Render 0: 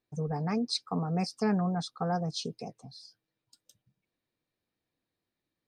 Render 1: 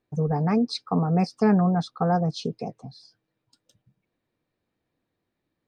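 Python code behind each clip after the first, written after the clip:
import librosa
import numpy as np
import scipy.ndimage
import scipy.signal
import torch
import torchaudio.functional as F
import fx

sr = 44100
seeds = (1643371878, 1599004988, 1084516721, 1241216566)

y = fx.lowpass(x, sr, hz=1700.0, slope=6)
y = y * 10.0 ** (8.5 / 20.0)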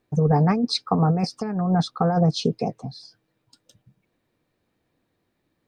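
y = fx.over_compress(x, sr, threshold_db=-23.0, ratio=-0.5)
y = y * 10.0 ** (4.5 / 20.0)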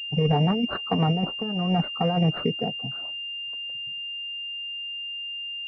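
y = fx.spec_quant(x, sr, step_db=15)
y = fx.pwm(y, sr, carrier_hz=2800.0)
y = y * 10.0 ** (-2.5 / 20.0)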